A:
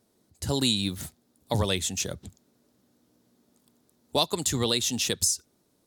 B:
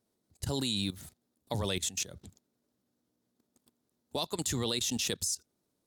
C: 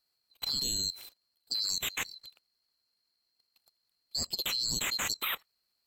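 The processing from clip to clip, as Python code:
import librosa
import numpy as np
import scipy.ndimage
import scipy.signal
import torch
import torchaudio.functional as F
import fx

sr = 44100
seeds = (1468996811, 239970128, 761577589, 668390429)

y1 = fx.level_steps(x, sr, step_db=16)
y2 = fx.band_swap(y1, sr, width_hz=4000)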